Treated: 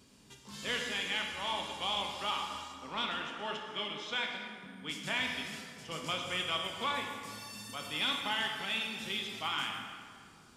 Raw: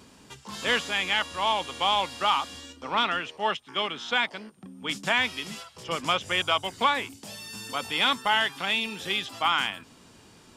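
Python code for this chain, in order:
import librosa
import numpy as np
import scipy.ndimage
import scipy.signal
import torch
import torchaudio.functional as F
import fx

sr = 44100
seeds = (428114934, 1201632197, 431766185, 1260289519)

y = fx.peak_eq(x, sr, hz=880.0, db=-7.0, octaves=2.4)
y = fx.rev_plate(y, sr, seeds[0], rt60_s=2.1, hf_ratio=0.65, predelay_ms=0, drr_db=1.0)
y = F.gain(torch.from_numpy(y), -7.5).numpy()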